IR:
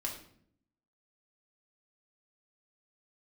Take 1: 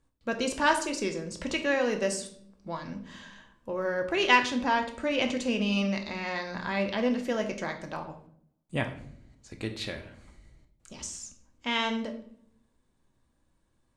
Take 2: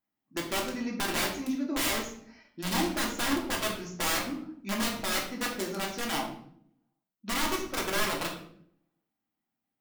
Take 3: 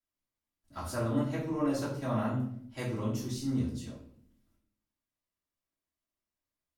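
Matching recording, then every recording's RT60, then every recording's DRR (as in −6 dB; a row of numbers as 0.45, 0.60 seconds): 2; 0.65, 0.65, 0.65 seconds; 4.0, −1.5, −10.5 decibels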